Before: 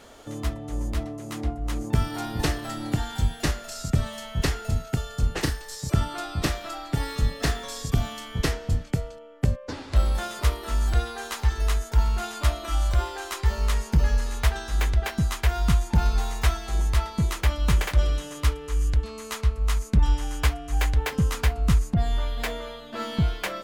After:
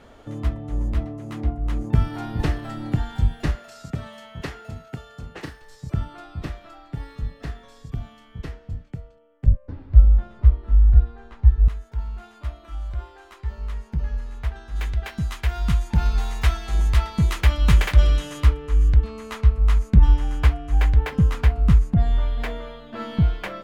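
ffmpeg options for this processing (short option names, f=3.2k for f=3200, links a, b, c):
-filter_complex "[0:a]asettb=1/sr,asplit=3[a][b][c];[a]atrim=end=3.554[d];[b]atrim=start=3.55:end=5.62,asetpts=PTS-STARTPTS,afade=t=in:d=0.004:c=qsin,afade=t=out:st=2.066:d=0.004:c=qsin,highpass=f=320:p=1[e];[c]atrim=start=5.616[f];[d][e]acrossfade=d=0.004:c1=hsin:c2=qsin[g];[g][f]acrossfade=d=0.004:c1=qsin:c2=hsin,asettb=1/sr,asplit=3[h][i][j];[h]atrim=end=9.464[k];[i]atrim=start=9.46:end=11.68,asetpts=PTS-STARTPTS,afade=t=in:d=0.004:c=qsin,afade=t=out:st=2.216:d=0.004:c=qsin,aemphasis=mode=reproduction:type=riaa[l];[j]atrim=start=11.676[m];[k][l]acrossfade=d=0.004:c1=hsin:c2=qsin[n];[n][m]acrossfade=d=0.004:c1=qsin:c2=hsin,asplit=3[o][p][q];[o]afade=t=out:st=14.75:d=0.02[r];[p]highshelf=f=2k:g=10.5,afade=t=in:st=14.75:d=0.02,afade=t=out:st=18.43:d=0.02[s];[q]afade=t=in:st=18.43:d=0.02[t];[r][s][t]amix=inputs=3:normalize=0,bass=f=250:g=6,treble=f=4k:g=-12,dynaudnorm=f=910:g=11:m=11.5dB,volume=-1dB"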